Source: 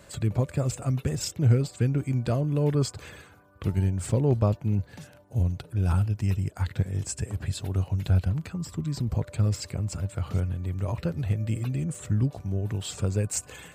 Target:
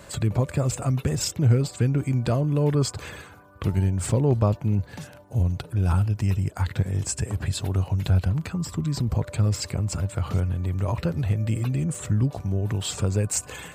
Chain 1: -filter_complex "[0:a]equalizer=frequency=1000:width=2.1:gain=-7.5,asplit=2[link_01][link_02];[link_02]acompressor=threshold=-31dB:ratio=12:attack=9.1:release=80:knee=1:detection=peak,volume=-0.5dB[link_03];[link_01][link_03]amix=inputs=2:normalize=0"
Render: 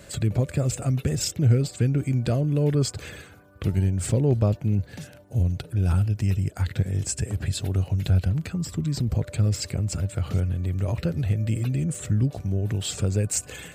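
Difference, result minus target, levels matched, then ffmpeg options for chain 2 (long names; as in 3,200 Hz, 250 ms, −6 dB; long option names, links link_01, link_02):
1,000 Hz band −6.0 dB
-filter_complex "[0:a]equalizer=frequency=1000:width=2.1:gain=3,asplit=2[link_01][link_02];[link_02]acompressor=threshold=-31dB:ratio=12:attack=9.1:release=80:knee=1:detection=peak,volume=-0.5dB[link_03];[link_01][link_03]amix=inputs=2:normalize=0"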